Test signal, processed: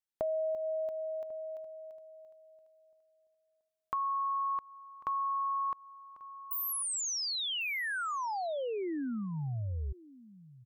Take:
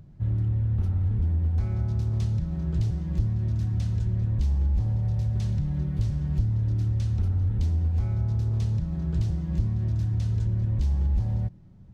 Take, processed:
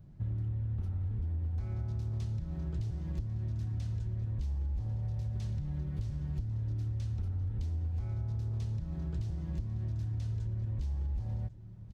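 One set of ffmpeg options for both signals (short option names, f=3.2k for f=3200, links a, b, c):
-af "aecho=1:1:1095:0.0841,adynamicequalizer=threshold=0.00398:dfrequency=180:dqfactor=4.3:tfrequency=180:tqfactor=4.3:attack=5:release=100:ratio=0.375:range=3:mode=cutabove:tftype=bell,acompressor=threshold=-29dB:ratio=4,volume=-3.5dB"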